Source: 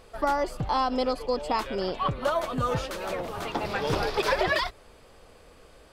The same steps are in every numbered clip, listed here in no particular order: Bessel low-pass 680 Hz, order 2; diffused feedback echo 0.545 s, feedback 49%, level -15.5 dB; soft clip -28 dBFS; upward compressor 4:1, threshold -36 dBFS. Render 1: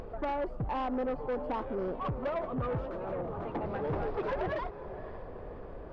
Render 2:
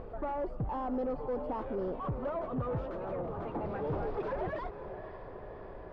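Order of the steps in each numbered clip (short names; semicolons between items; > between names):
Bessel low-pass > upward compressor > diffused feedback echo > soft clip; diffused feedback echo > upward compressor > soft clip > Bessel low-pass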